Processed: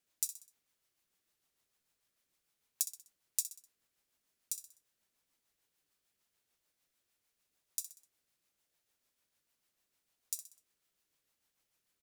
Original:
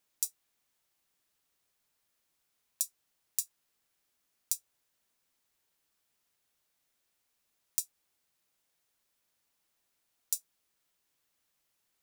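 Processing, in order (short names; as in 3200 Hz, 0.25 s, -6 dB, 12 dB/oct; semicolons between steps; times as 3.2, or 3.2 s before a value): rotary speaker horn 6.7 Hz; on a send: feedback echo 63 ms, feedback 43%, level -12 dB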